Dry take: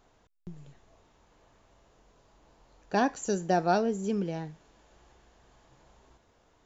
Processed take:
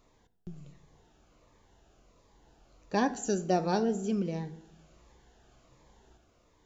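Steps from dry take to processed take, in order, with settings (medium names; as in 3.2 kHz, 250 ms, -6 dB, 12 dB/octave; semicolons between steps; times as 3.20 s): on a send at -13 dB: reverberation RT60 0.80 s, pre-delay 3 ms; on the sum: Shepard-style phaser falling 1.4 Hz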